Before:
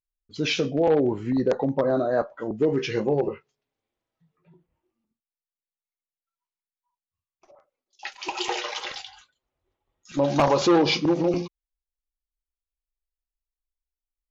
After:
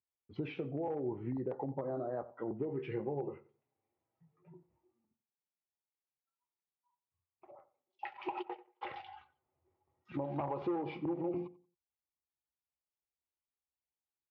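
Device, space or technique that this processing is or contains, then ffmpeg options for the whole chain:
bass amplifier: -filter_complex "[0:a]asplit=3[s0][s1][s2];[s0]afade=t=out:st=8.41:d=0.02[s3];[s1]agate=range=0.00355:threshold=0.0631:ratio=16:detection=peak,afade=t=in:st=8.41:d=0.02,afade=t=out:st=8.81:d=0.02[s4];[s2]afade=t=in:st=8.81:d=0.02[s5];[s3][s4][s5]amix=inputs=3:normalize=0,acompressor=threshold=0.0178:ratio=5,highpass=f=76:w=0.5412,highpass=f=76:w=1.3066,equalizer=f=81:t=q:w=4:g=8,equalizer=f=130:t=q:w=4:g=6,equalizer=f=360:t=q:w=4:g=6,equalizer=f=830:t=q:w=4:g=7,equalizer=f=1600:t=q:w=4:g=-6,lowpass=f=2300:w=0.5412,lowpass=f=2300:w=1.3066,asplit=2[s6][s7];[s7]adelay=90,lowpass=f=1400:p=1,volume=0.15,asplit=2[s8][s9];[s9]adelay=90,lowpass=f=1400:p=1,volume=0.26,asplit=2[s10][s11];[s11]adelay=90,lowpass=f=1400:p=1,volume=0.26[s12];[s6][s8][s10][s12]amix=inputs=4:normalize=0,volume=0.631"

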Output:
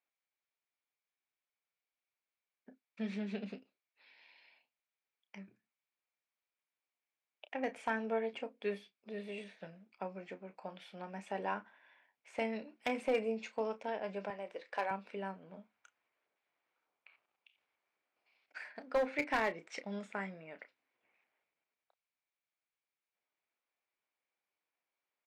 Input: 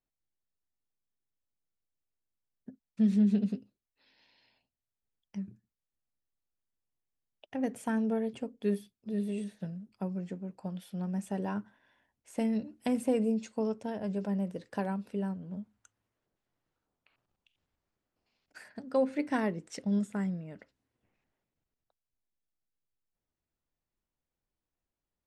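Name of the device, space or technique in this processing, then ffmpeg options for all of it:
megaphone: -filter_complex "[0:a]highpass=610,lowpass=3600,equalizer=f=2300:t=o:w=0.25:g=9.5,asoftclip=type=hard:threshold=0.0376,asplit=2[s0][s1];[s1]adelay=31,volume=0.266[s2];[s0][s2]amix=inputs=2:normalize=0,asettb=1/sr,asplit=3[s3][s4][s5];[s3]atrim=end=14.304[s6];[s4]atrim=start=14.3:end=14.91,asetpts=PTS-STARTPTS,afade=t=in:d=0.004:c=qsin,afade=t=out:st=0.606:d=0.004:c=qsin,highpass=380[s7];[s5]atrim=start=14.906[s8];[s6][s7]acrossfade=d=0.004:c1=hsin:c2=qsin[s9];[s9][s8]acrossfade=d=0.004:c1=qsin:c2=hsin,equalizer=f=69:t=o:w=2:g=6,volume=1.41"

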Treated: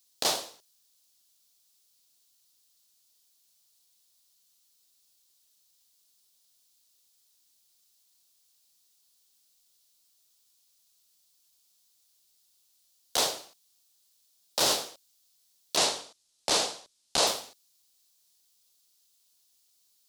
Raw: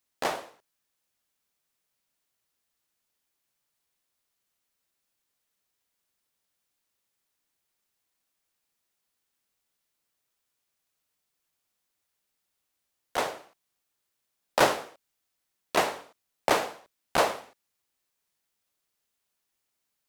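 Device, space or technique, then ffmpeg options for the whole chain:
over-bright horn tweeter: -filter_complex "[0:a]asettb=1/sr,asplit=3[s0][s1][s2];[s0]atrim=end=15.774[s3];[s1]atrim=start=15.77:end=17.27,asetpts=PTS-STARTPTS,afade=t=in:d=0.004:c=qsin,afade=t=out:st=1.496:d=0.004:c=qsin,lowpass=f=10000:w=0.5412,lowpass=f=10000:w=1.3066[s4];[s2]atrim=start=17.266[s5];[s3][s4]acrossfade=d=0.004:c1=hsin:c2=qsin[s6];[s6][s5]acrossfade=d=0.004:c1=qsin:c2=hsin,highshelf=f=2900:t=q:w=1.5:g=12.5,alimiter=limit=0.2:level=0:latency=1:release=22"

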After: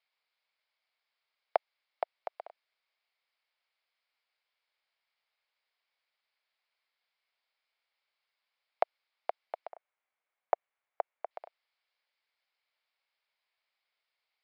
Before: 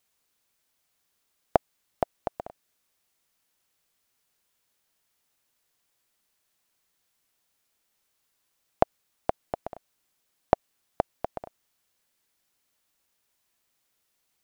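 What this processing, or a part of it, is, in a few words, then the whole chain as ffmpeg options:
musical greeting card: -filter_complex "[0:a]aresample=11025,aresample=44100,highpass=f=540:w=0.5412,highpass=f=540:w=1.3066,equalizer=f=2200:t=o:w=0.21:g=8,asettb=1/sr,asplit=3[s0][s1][s2];[s0]atrim=end=9.694[s3];[s1]atrim=start=9.69:end=11.31,asetpts=PTS-STARTPTS,afade=t=in:d=0.004:c=qsin,afade=t=out:st=1.616:d=0.004:c=qsin,lowpass=1900[s4];[s2]atrim=start=11.306[s5];[s3][s4]acrossfade=d=0.004:c1=hsin:c2=qsin[s6];[s6][s5]acrossfade=d=0.004:c1=qsin:c2=hsin,volume=0.531"

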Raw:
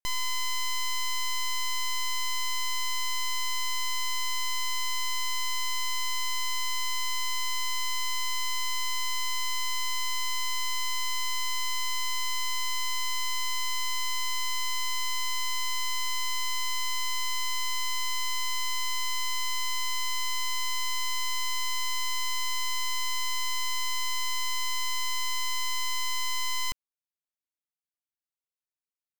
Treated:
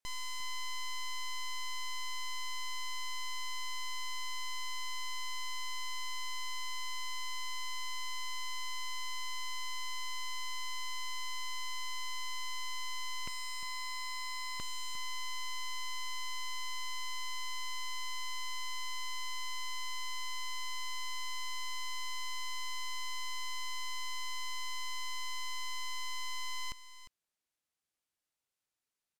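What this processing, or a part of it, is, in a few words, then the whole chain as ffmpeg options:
overflowing digital effects unit: -filter_complex "[0:a]asettb=1/sr,asplit=3[s0][s1][s2];[s0]atrim=end=13.274[s3];[s1]atrim=start=13.27:end=14.6,asetpts=PTS-STARTPTS,afade=t=in:d=0.004:c=qsin,afade=t=out:st=1.326:d=0.004:c=qsin,aecho=1:1:4.6:0.36,atrim=end_sample=58653[s4];[s2]atrim=start=14.596[s5];[s3][s4]acrossfade=d=0.004:c1=hsin:c2=qsin[s6];[s6][s5]acrossfade=d=0.004:c1=qsin:c2=hsin,aeval=exprs='(mod(112*val(0)+1,2)-1)/112':c=same,lowpass=12000,aecho=1:1:353:0.224,volume=2"

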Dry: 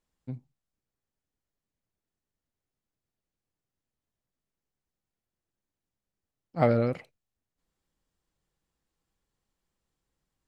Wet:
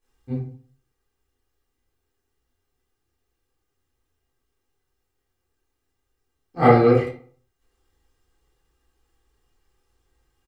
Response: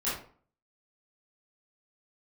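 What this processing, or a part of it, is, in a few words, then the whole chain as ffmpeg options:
microphone above a desk: -filter_complex "[0:a]aecho=1:1:2.5:0.72[s0];[1:a]atrim=start_sample=2205[s1];[s0][s1]afir=irnorm=-1:irlink=0,volume=1.41"

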